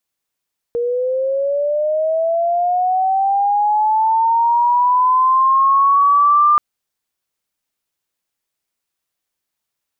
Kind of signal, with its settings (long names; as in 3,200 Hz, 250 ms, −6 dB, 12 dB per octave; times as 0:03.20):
glide linear 470 Hz → 1,200 Hz −16 dBFS → −8.5 dBFS 5.83 s